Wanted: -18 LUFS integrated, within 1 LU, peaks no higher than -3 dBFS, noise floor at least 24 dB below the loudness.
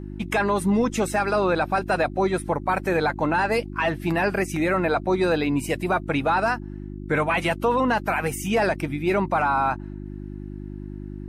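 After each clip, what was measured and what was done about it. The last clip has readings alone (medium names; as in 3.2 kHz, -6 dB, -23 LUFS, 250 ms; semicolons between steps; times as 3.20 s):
hum 50 Hz; highest harmonic 350 Hz; hum level -33 dBFS; loudness -23.5 LUFS; peak level -12.0 dBFS; loudness target -18.0 LUFS
-> de-hum 50 Hz, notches 7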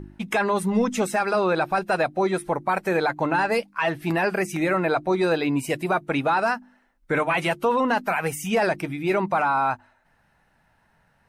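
hum not found; loudness -23.5 LUFS; peak level -12.0 dBFS; loudness target -18.0 LUFS
-> trim +5.5 dB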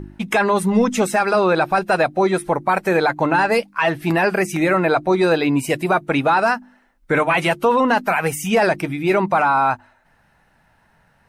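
loudness -18.0 LUFS; peak level -6.5 dBFS; noise floor -59 dBFS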